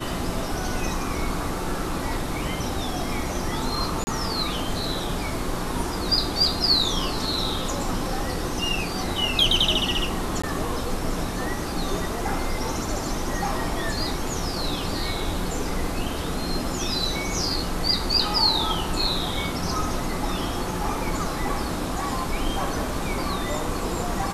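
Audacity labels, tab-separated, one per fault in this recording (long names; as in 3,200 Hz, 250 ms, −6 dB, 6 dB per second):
4.040000	4.070000	drop-out 30 ms
10.420000	10.440000	drop-out 15 ms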